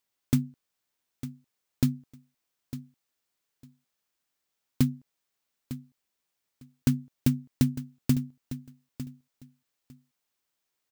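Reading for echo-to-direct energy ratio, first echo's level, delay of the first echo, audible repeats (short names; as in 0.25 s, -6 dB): -13.5 dB, -13.5 dB, 0.903 s, 2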